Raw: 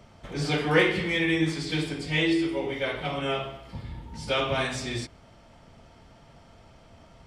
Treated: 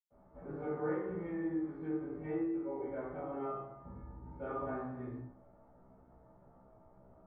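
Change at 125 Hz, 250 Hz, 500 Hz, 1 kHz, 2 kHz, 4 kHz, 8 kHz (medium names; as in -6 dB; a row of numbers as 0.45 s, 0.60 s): -15.5 dB, -9.5 dB, -10.5 dB, -11.0 dB, -24.5 dB, under -40 dB, under -35 dB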